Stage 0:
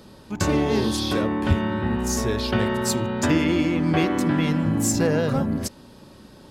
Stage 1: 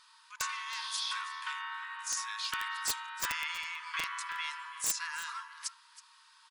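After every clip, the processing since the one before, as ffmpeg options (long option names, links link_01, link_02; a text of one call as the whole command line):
ffmpeg -i in.wav -af "afftfilt=real='re*between(b*sr/4096,900,11000)':imag='im*between(b*sr/4096,900,11000)':win_size=4096:overlap=0.75,aeval=exprs='(mod(7.5*val(0)+1,2)-1)/7.5':channel_layout=same,aecho=1:1:322:0.158,volume=-5.5dB" out.wav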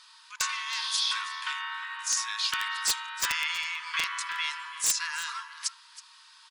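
ffmpeg -i in.wav -af "equalizer=frequency=4300:width=0.42:gain=7.5,volume=1dB" out.wav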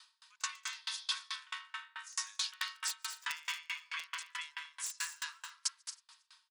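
ffmpeg -i in.wav -filter_complex "[0:a]highpass=frequency=1000:poles=1,asplit=2[link_01][link_02];[link_02]aecho=0:1:144|227|267:0.282|0.398|0.211[link_03];[link_01][link_03]amix=inputs=2:normalize=0,aeval=exprs='val(0)*pow(10,-33*if(lt(mod(4.6*n/s,1),2*abs(4.6)/1000),1-mod(4.6*n/s,1)/(2*abs(4.6)/1000),(mod(4.6*n/s,1)-2*abs(4.6)/1000)/(1-2*abs(4.6)/1000))/20)':channel_layout=same,volume=-1.5dB" out.wav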